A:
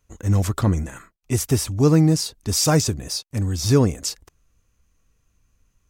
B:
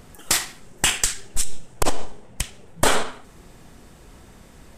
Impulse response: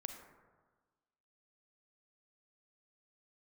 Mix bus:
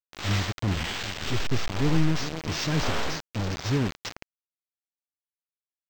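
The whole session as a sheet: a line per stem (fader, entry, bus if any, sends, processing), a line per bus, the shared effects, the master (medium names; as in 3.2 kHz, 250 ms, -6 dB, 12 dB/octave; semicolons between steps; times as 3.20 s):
-8.5 dB, 0.00 s, no send, echo send -14 dB, high-order bell 780 Hz -8.5 dB
+1.5 dB, 0.00 s, send -11 dB, no echo send, spectral blur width 236 ms; vibrato 3.7 Hz 84 cents; auto duck -11 dB, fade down 0.65 s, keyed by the first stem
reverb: on, RT60 1.4 s, pre-delay 32 ms
echo: feedback delay 405 ms, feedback 31%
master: bit crusher 5-bit; decimation joined by straight lines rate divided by 4×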